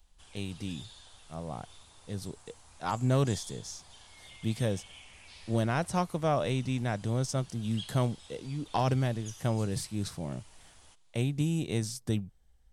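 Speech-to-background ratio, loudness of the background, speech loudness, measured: 18.5 dB, −51.0 LKFS, −32.5 LKFS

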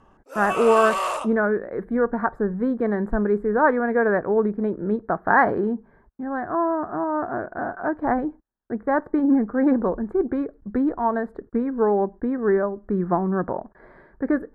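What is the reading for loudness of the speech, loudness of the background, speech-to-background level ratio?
−23.0 LKFS, −26.5 LKFS, 3.5 dB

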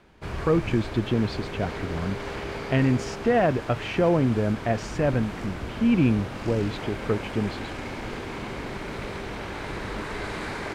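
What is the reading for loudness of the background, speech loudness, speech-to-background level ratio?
−34.5 LKFS, −26.0 LKFS, 8.5 dB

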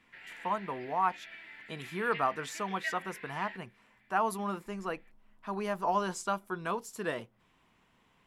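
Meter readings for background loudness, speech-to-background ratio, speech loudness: −44.5 LKFS, 10.0 dB, −34.5 LKFS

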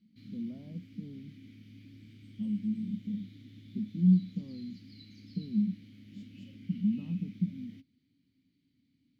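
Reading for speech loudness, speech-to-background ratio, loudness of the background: −33.5 LKFS, 19.0 dB, −52.5 LKFS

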